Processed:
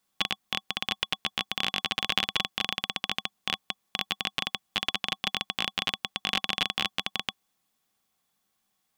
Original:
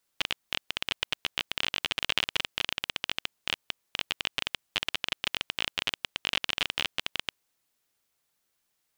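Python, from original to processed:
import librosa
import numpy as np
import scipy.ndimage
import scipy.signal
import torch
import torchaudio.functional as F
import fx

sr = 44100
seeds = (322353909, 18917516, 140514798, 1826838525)

y = fx.small_body(x, sr, hz=(200.0, 770.0, 1100.0, 3400.0), ring_ms=50, db=11)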